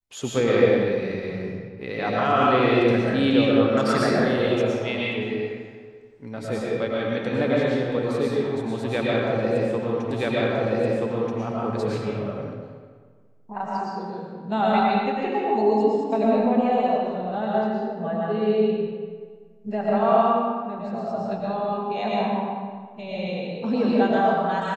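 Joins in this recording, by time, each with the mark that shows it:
10.11 repeat of the last 1.28 s

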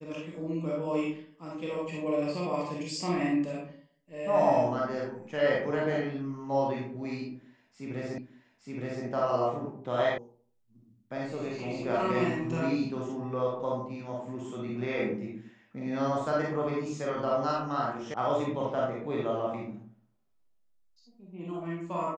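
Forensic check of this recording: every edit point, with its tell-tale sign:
8.18 repeat of the last 0.87 s
10.18 sound cut off
18.14 sound cut off

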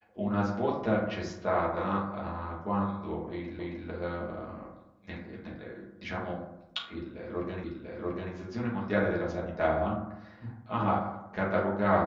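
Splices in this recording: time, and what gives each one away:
3.59 repeat of the last 0.27 s
7.64 repeat of the last 0.69 s

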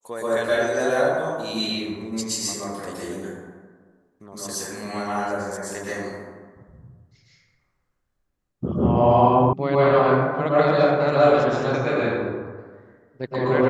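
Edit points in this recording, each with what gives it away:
9.53 sound cut off

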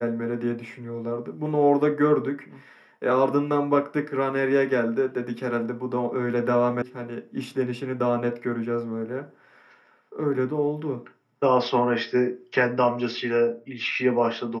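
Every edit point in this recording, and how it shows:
6.82 sound cut off

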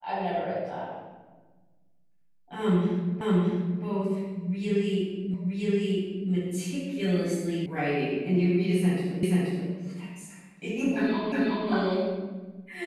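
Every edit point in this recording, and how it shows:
3.21 repeat of the last 0.62 s
5.34 repeat of the last 0.97 s
7.66 sound cut off
9.23 repeat of the last 0.48 s
11.32 repeat of the last 0.37 s

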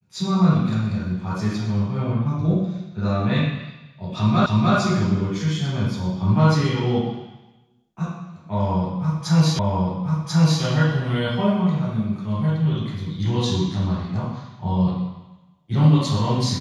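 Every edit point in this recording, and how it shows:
4.46 repeat of the last 0.3 s
9.59 repeat of the last 1.04 s

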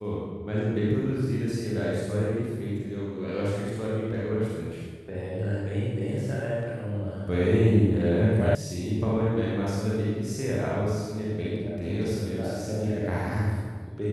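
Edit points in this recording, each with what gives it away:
8.55 sound cut off

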